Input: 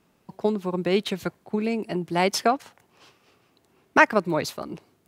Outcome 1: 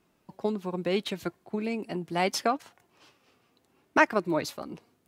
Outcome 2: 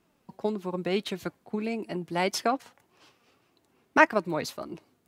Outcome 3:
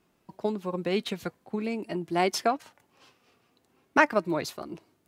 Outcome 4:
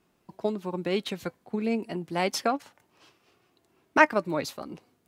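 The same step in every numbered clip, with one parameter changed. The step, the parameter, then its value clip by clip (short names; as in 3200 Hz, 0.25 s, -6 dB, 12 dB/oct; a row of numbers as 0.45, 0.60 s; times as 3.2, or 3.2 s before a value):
flange, rate: 0.72, 1.7, 0.44, 0.29 Hz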